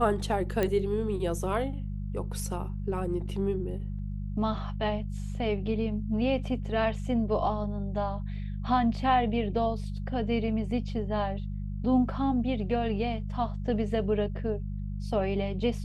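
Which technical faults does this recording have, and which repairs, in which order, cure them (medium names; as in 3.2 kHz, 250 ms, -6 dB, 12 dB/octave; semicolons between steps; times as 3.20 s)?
hum 50 Hz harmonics 4 -34 dBFS
0.63 s: pop -14 dBFS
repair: de-click; de-hum 50 Hz, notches 4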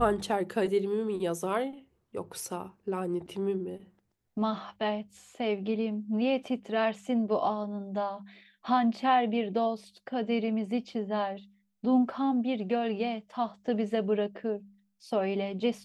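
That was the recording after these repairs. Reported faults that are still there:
nothing left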